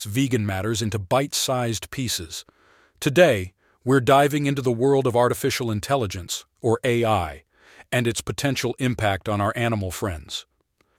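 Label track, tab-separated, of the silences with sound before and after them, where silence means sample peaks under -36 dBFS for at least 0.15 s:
2.490000	3.020000	silence
3.480000	3.860000	silence
6.410000	6.640000	silence
7.380000	7.800000	silence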